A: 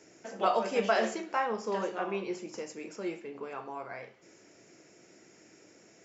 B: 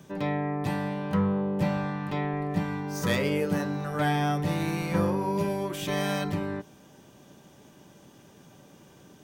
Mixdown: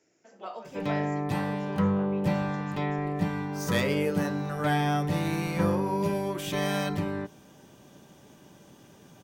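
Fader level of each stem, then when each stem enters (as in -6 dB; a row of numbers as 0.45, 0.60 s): -12.5, 0.0 dB; 0.00, 0.65 s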